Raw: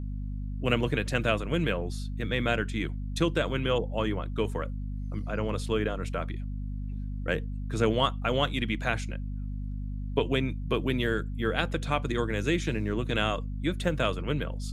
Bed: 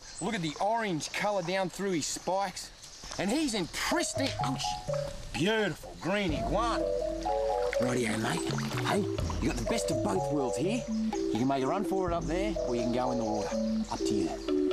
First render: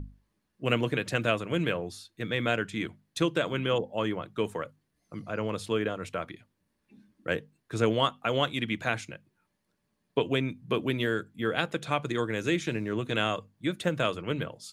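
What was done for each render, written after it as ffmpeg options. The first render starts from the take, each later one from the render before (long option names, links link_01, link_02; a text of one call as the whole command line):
ffmpeg -i in.wav -af "bandreject=frequency=50:width_type=h:width=6,bandreject=frequency=100:width_type=h:width=6,bandreject=frequency=150:width_type=h:width=6,bandreject=frequency=200:width_type=h:width=6,bandreject=frequency=250:width_type=h:width=6" out.wav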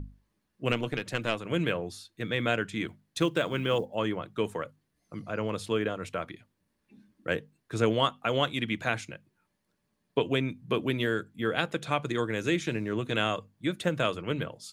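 ffmpeg -i in.wav -filter_complex "[0:a]asettb=1/sr,asplit=3[link_01][link_02][link_03];[link_01]atrim=end=0.724[link_04];[link_02]atrim=start=0.72:end=1.45,asetpts=PTS-STARTPTS,afade=type=in:duration=0.004:curve=qsin,afade=type=out:start_time=0.726:duration=0.004:curve=qsin,aeval=exprs='(tanh(5.62*val(0)+0.7)-tanh(0.7))/5.62':channel_layout=same[link_05];[link_03]atrim=start=1.446[link_06];[link_04][link_05]acrossfade=duration=0.004:curve1=hsin:curve2=qsin[link_07];[link_07][link_06]acrossfade=duration=0.004:curve1=qsin:curve2=hsin,asettb=1/sr,asplit=3[link_08][link_09][link_10];[link_08]atrim=end=2.884[link_11];[link_09]atrim=start=2.88:end=3.95,asetpts=PTS-STARTPTS,afade=type=in:duration=0.004:curve=qsin,afade=type=out:start_time=1.066:duration=0.004:curve=qsin,acrusher=bits=9:mode=log:mix=0:aa=0.000001[link_12];[link_10]atrim=start=3.946[link_13];[link_11][link_12]acrossfade=duration=0.004:curve1=hsin:curve2=qsin[link_14];[link_14][link_13]acrossfade=duration=0.004:curve1=qsin:curve2=hsin" out.wav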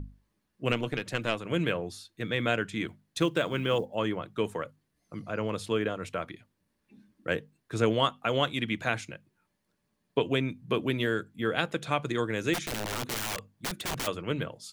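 ffmpeg -i in.wav -filter_complex "[0:a]asplit=3[link_01][link_02][link_03];[link_01]afade=type=out:start_time=12.53:duration=0.02[link_04];[link_02]aeval=exprs='(mod(22.4*val(0)+1,2)-1)/22.4':channel_layout=same,afade=type=in:start_time=12.53:duration=0.02,afade=type=out:start_time=14.06:duration=0.02[link_05];[link_03]afade=type=in:start_time=14.06:duration=0.02[link_06];[link_04][link_05][link_06]amix=inputs=3:normalize=0" out.wav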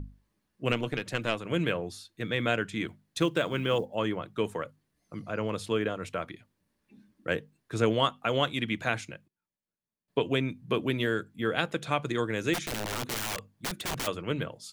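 ffmpeg -i in.wav -filter_complex "[0:a]asplit=3[link_01][link_02][link_03];[link_01]atrim=end=9.28,asetpts=PTS-STARTPTS,afade=type=out:start_time=8.98:duration=0.3:curve=log:silence=0.105925[link_04];[link_02]atrim=start=9.28:end=10.08,asetpts=PTS-STARTPTS,volume=-19.5dB[link_05];[link_03]atrim=start=10.08,asetpts=PTS-STARTPTS,afade=type=in:duration=0.3:curve=log:silence=0.105925[link_06];[link_04][link_05][link_06]concat=n=3:v=0:a=1" out.wav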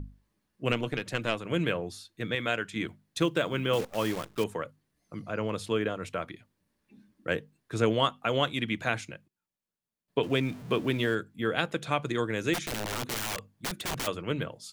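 ffmpeg -i in.wav -filter_complex "[0:a]asettb=1/sr,asplit=3[link_01][link_02][link_03];[link_01]atrim=end=2.354[link_04];[link_02]atrim=start=2.35:end=2.76,asetpts=PTS-STARTPTS,afade=type=in:duration=0.004:curve=qsin,afade=type=out:start_time=0.406:duration=0.004:curve=qsin,lowshelf=frequency=470:gain=-7[link_05];[link_03]atrim=start=2.756[link_06];[link_04][link_05]acrossfade=duration=0.004:curve1=hsin:curve2=qsin[link_07];[link_07][link_06]acrossfade=duration=0.004:curve1=qsin:curve2=hsin,asettb=1/sr,asplit=3[link_08][link_09][link_10];[link_08]atrim=end=3.734[link_11];[link_09]atrim=start=3.73:end=4.44,asetpts=PTS-STARTPTS,afade=type=in:duration=0.004:curve=qsin,afade=type=out:start_time=0.706:duration=0.004:curve=qsin,acrusher=bits=7:dc=4:mix=0:aa=0.000001[link_12];[link_10]atrim=start=4.436[link_13];[link_11][link_12]acrossfade=duration=0.004:curve1=hsin:curve2=qsin[link_14];[link_14][link_13]acrossfade=duration=0.004:curve1=qsin:curve2=hsin,asettb=1/sr,asplit=3[link_15][link_16][link_17];[link_15]atrim=end=10.234[link_18];[link_16]atrim=start=10.23:end=11.15,asetpts=PTS-STARTPTS,afade=type=in:duration=0.004:curve=qsin,afade=type=out:start_time=0.916:duration=0.004:curve=qsin,aeval=exprs='val(0)+0.5*0.00794*sgn(val(0))':channel_layout=same[link_19];[link_17]atrim=start=11.146[link_20];[link_18][link_19]acrossfade=duration=0.004:curve1=hsin:curve2=qsin[link_21];[link_21][link_20]acrossfade=duration=0.004:curve1=qsin:curve2=hsin" out.wav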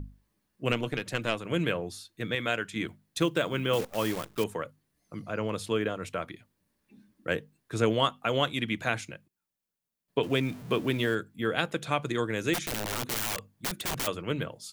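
ffmpeg -i in.wav -af "highshelf=frequency=10000:gain=6.5" out.wav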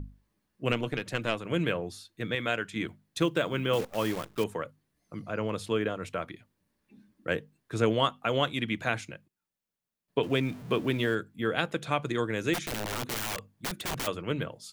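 ffmpeg -i in.wav -af "highshelf=frequency=5100:gain=-4.5" out.wav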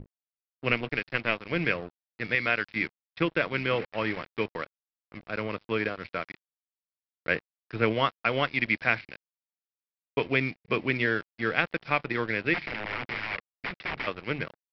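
ffmpeg -i in.wav -af "lowpass=frequency=2200:width_type=q:width=3.9,aresample=11025,aeval=exprs='sgn(val(0))*max(abs(val(0))-0.0106,0)':channel_layout=same,aresample=44100" out.wav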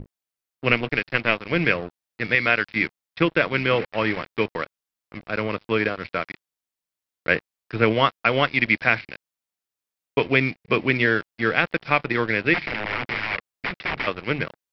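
ffmpeg -i in.wav -af "volume=6.5dB,alimiter=limit=-2dB:level=0:latency=1" out.wav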